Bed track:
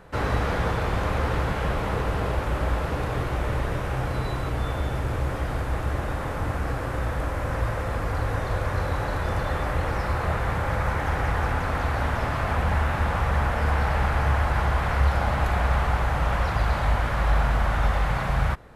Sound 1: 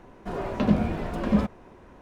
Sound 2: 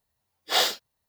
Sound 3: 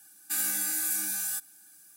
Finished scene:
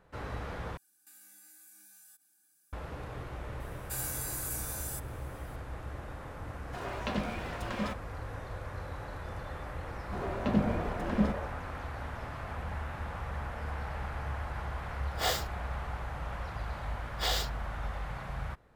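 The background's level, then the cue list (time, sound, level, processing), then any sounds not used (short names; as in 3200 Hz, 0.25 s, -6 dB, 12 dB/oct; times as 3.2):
bed track -14.5 dB
0.77 replace with 3 -14.5 dB + compressor 4:1, threshold -41 dBFS
3.6 add 3 -8.5 dB
6.47 add 1 -7 dB + tilt shelf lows -8.5 dB, about 730 Hz
9.86 add 1 -6 dB + delay with a stepping band-pass 0.15 s, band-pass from 600 Hz, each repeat 0.7 oct, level -2.5 dB
14.69 add 2 -5.5 dB + bell 3800 Hz -6.5 dB 1.2 oct
16.71 add 2 -4.5 dB + compressor 4:1, threshold -23 dBFS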